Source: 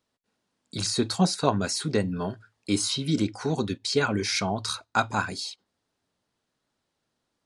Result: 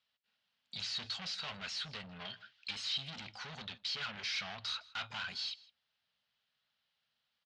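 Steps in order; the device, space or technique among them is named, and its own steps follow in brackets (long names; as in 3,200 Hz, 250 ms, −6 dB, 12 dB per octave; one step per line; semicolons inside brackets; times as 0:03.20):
0:02.25–0:02.71: meter weighting curve D
scooped metal amplifier (tube saturation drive 34 dB, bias 0.35; loudspeaker in its box 94–4,400 Hz, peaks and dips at 97 Hz −8 dB, 240 Hz +7 dB, 350 Hz −5 dB, 1,000 Hz −4 dB, 3,000 Hz +5 dB; guitar amp tone stack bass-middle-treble 10-0-10)
single-tap delay 160 ms −22 dB
level +4 dB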